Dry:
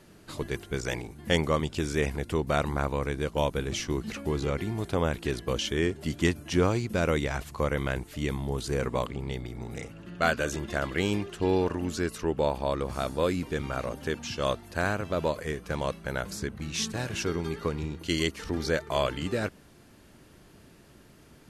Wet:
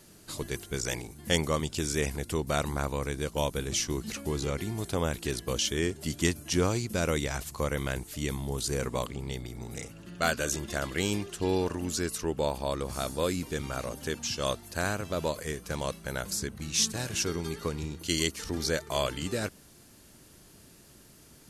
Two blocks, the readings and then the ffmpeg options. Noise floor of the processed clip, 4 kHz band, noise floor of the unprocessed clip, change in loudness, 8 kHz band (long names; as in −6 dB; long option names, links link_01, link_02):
−55 dBFS, +2.0 dB, −55 dBFS, −1.5 dB, +7.5 dB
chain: -af "bass=frequency=250:gain=1,treble=frequency=4000:gain=12,volume=-3dB"